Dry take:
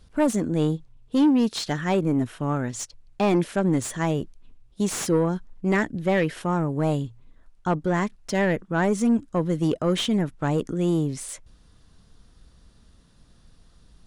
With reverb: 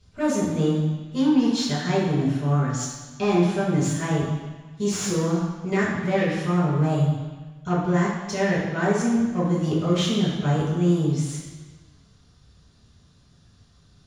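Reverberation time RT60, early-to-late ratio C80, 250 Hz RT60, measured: 1.4 s, 3.0 dB, 1.3 s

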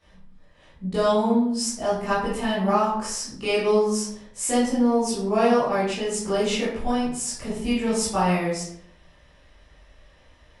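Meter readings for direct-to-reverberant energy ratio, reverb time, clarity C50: -11.0 dB, 0.65 s, 2.0 dB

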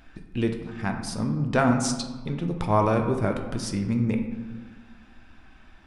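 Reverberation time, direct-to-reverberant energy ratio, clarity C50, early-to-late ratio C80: 1.5 s, 4.0 dB, 7.0 dB, 9.0 dB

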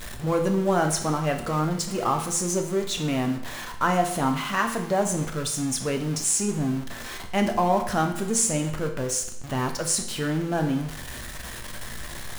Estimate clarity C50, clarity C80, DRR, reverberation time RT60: 8.5 dB, 11.5 dB, 3.5 dB, 0.75 s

